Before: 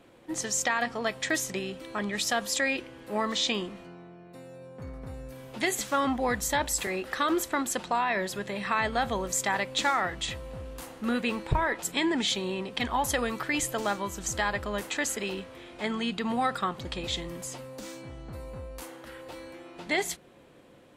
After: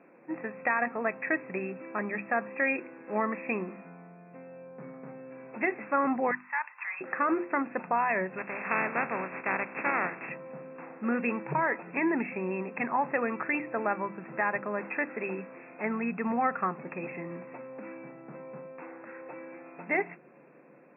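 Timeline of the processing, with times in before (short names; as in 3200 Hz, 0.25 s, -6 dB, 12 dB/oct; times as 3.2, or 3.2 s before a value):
6.31–7.01 elliptic band-pass 960–4200 Hz
8.37–10.28 spectral contrast lowered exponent 0.35
whole clip: FFT band-pass 130–2700 Hz; notches 50/100/150/200/250/300/350 Hz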